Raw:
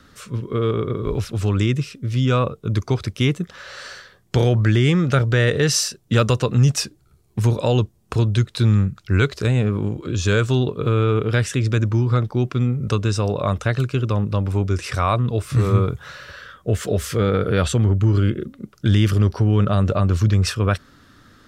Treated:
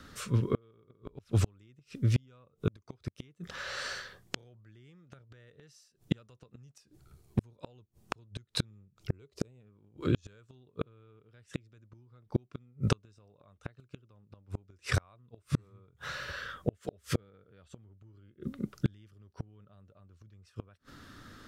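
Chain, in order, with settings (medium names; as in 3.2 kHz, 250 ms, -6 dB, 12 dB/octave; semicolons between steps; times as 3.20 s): 8.70–9.60 s: fifteen-band graphic EQ 400 Hz +6 dB, 1.6 kHz -10 dB, 4 kHz -4 dB; inverted gate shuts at -13 dBFS, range -39 dB; trim -1.5 dB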